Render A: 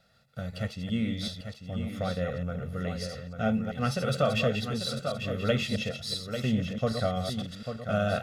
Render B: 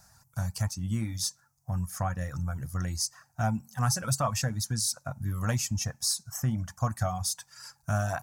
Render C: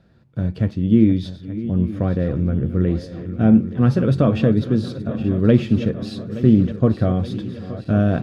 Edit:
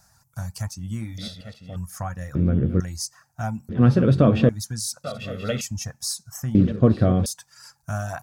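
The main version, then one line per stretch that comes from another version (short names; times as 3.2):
B
1.18–1.76 from A
2.35–2.8 from C
3.69–4.49 from C
5.04–5.61 from A
6.55–7.26 from C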